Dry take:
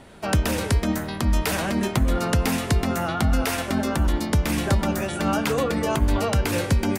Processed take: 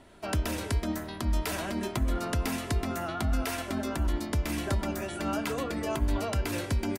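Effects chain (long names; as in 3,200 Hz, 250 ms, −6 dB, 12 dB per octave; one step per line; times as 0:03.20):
comb filter 3 ms, depth 38%
level −8.5 dB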